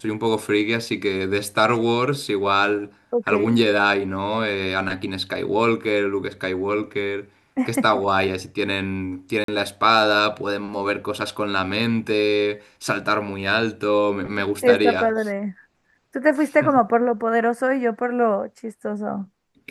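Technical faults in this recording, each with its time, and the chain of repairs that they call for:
0:09.44–0:09.48: drop-out 43 ms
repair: repair the gap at 0:09.44, 43 ms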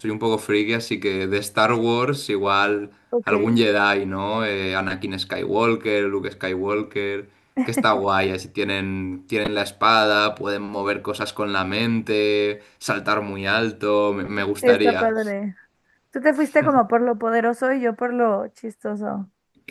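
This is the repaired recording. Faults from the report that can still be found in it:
none of them is left

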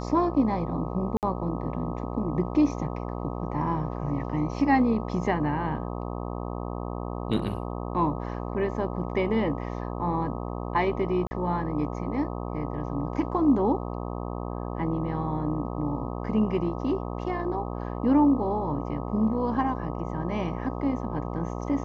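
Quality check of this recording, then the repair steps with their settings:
mains buzz 60 Hz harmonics 21 −33 dBFS
0:01.17–0:01.23: drop-out 58 ms
0:11.27–0:11.31: drop-out 40 ms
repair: hum removal 60 Hz, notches 21
repair the gap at 0:01.17, 58 ms
repair the gap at 0:11.27, 40 ms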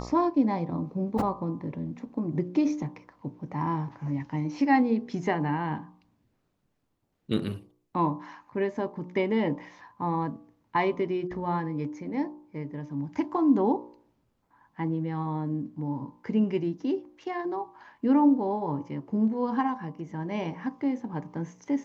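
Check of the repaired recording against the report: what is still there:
none of them is left

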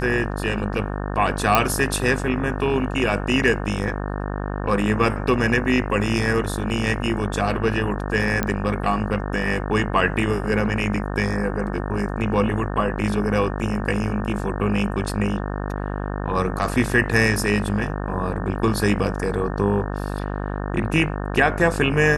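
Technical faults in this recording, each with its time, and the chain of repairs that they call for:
mains buzz 50 Hz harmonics 36 −27 dBFS
0:01.55: click −1 dBFS
0:08.43: click −7 dBFS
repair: click removal
hum removal 50 Hz, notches 36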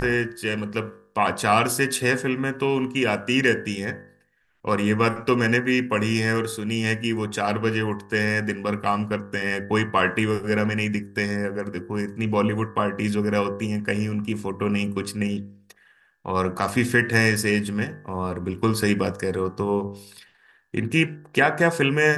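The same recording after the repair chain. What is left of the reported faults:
none of them is left

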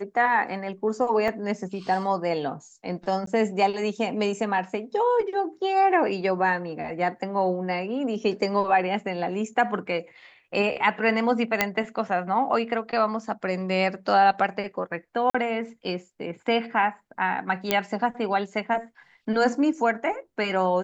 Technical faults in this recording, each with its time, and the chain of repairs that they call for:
0:01.28: drop-out 3.4 ms
0:03.26–0:03.27: drop-out 13 ms
0:11.61: click −4 dBFS
0:15.30–0:15.35: drop-out 45 ms
0:17.71: click −6 dBFS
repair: click removal
repair the gap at 0:01.28, 3.4 ms
repair the gap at 0:03.26, 13 ms
repair the gap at 0:15.30, 45 ms

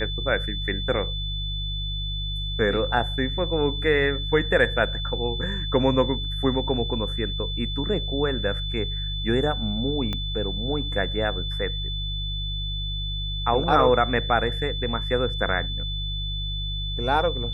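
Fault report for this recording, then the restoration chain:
mains hum 50 Hz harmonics 3 −30 dBFS
whistle 3,500 Hz −31 dBFS
0:10.13: click −16 dBFS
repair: click removal
notch filter 3,500 Hz, Q 30
hum removal 50 Hz, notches 3

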